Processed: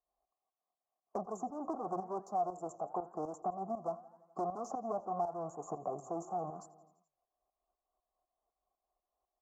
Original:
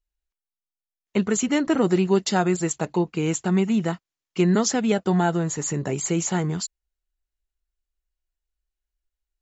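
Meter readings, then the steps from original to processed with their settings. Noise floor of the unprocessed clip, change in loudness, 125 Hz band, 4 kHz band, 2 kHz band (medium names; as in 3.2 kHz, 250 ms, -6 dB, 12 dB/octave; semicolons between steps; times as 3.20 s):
under -85 dBFS, -17.0 dB, -26.5 dB, under -35 dB, under -35 dB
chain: local Wiener filter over 15 samples; saturation -23.5 dBFS, distortion -9 dB; vowel filter a; tremolo saw up 4 Hz, depth 75%; Chebyshev band-stop 1.1–6.2 kHz, order 3; on a send: feedback delay 84 ms, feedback 60%, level -21 dB; on the sum: flange 0.89 Hz, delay 2 ms, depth 7.3 ms, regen +89%; three bands compressed up and down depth 70%; trim +13 dB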